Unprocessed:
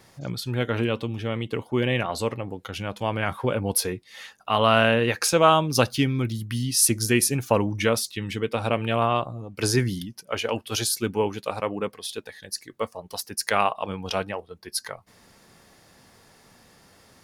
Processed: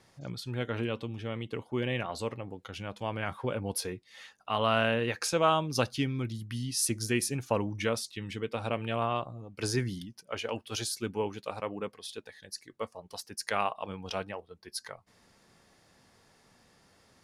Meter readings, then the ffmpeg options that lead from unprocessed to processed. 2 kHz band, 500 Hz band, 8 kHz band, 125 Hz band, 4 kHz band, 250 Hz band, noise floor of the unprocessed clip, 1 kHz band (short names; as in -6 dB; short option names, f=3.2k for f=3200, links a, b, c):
-8.0 dB, -8.0 dB, -10.0 dB, -8.0 dB, -8.0 dB, -8.0 dB, -56 dBFS, -8.0 dB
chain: -af "lowpass=10k,volume=-8dB"